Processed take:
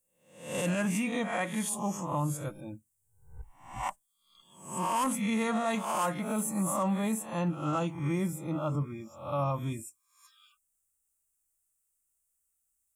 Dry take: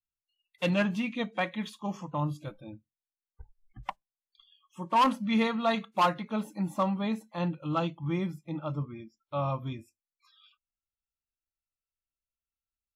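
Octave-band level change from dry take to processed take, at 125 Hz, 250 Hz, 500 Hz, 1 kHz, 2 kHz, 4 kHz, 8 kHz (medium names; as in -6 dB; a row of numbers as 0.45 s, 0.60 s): +0.5 dB, -0.5 dB, -1.0 dB, -2.5 dB, -1.5 dB, -4.5 dB, +17.0 dB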